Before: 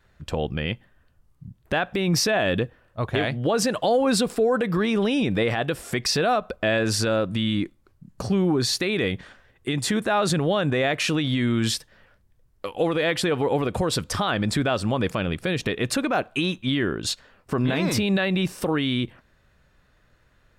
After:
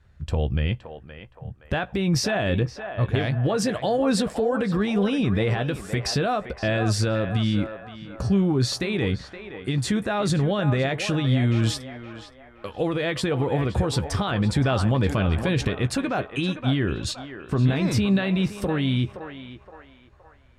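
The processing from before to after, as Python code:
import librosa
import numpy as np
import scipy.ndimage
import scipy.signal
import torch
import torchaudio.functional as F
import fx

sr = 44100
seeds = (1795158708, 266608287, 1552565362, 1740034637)

y = scipy.signal.sosfilt(scipy.signal.butter(2, 11000.0, 'lowpass', fs=sr, output='sos'), x)
y = fx.peak_eq(y, sr, hz=76.0, db=14.0, octaves=2.0)
y = fx.doubler(y, sr, ms=15.0, db=-12.0)
y = fx.echo_banded(y, sr, ms=519, feedback_pct=51, hz=1000.0, wet_db=-7.0)
y = fx.env_flatten(y, sr, amount_pct=50, at=(14.61, 15.68))
y = y * 10.0 ** (-4.0 / 20.0)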